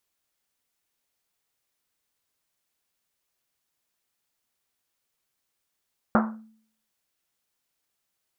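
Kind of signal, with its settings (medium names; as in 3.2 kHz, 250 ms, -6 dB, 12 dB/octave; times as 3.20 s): Risset drum, pitch 220 Hz, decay 0.58 s, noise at 1 kHz, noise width 930 Hz, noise 40%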